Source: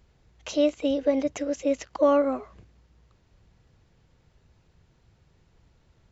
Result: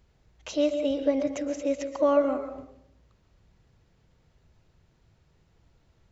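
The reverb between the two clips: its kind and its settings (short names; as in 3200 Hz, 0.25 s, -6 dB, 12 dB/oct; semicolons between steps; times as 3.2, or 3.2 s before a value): digital reverb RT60 0.71 s, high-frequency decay 0.35×, pre-delay 95 ms, DRR 8 dB; gain -2.5 dB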